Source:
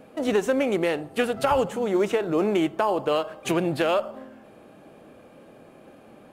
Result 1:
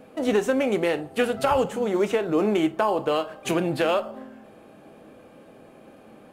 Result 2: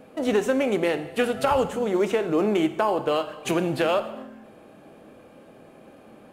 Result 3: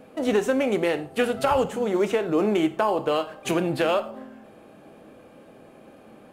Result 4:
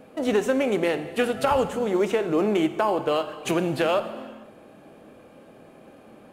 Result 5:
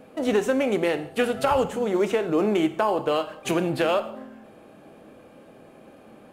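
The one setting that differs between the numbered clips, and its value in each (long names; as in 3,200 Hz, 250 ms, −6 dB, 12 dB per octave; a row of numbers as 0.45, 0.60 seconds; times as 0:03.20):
reverb whose tail is shaped and stops, gate: 80, 330, 140, 520, 220 milliseconds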